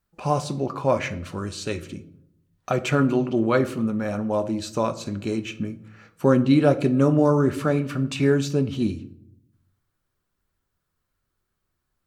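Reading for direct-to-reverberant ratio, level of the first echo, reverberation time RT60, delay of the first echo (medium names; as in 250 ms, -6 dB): 8.5 dB, no echo, 0.75 s, no echo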